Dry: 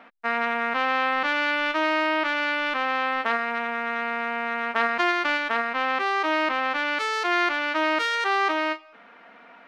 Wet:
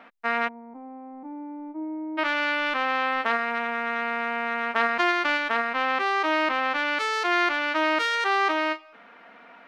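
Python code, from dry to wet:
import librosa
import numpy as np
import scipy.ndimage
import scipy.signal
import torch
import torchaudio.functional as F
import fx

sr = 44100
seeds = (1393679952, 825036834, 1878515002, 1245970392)

y = fx.formant_cascade(x, sr, vowel='u', at=(0.47, 2.17), fade=0.02)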